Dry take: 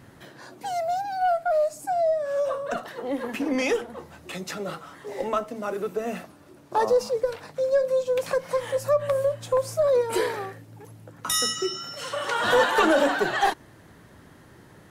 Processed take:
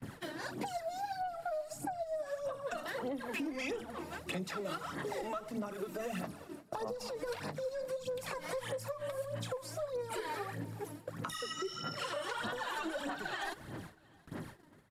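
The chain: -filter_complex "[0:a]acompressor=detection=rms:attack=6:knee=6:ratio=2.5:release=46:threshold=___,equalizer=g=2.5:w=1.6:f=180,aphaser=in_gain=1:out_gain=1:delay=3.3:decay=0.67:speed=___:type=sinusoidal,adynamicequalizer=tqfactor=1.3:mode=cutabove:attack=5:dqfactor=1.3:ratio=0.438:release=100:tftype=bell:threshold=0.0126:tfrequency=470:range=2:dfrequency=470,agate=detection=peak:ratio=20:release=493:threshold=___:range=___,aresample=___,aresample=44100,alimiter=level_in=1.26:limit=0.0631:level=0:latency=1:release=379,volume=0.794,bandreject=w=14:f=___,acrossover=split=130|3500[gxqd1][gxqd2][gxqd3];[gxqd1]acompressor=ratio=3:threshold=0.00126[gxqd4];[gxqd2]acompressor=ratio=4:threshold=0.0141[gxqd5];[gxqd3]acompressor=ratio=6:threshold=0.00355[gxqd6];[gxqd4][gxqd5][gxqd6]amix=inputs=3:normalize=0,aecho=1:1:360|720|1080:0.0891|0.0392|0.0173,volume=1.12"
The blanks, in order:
0.02, 1.6, 0.00631, 0.0631, 32000, 6200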